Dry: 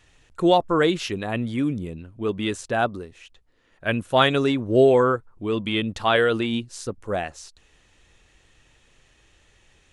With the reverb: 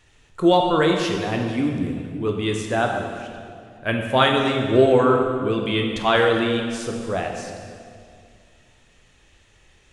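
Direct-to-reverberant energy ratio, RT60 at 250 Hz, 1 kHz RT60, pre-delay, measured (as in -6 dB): 1.5 dB, 2.7 s, 2.1 s, 11 ms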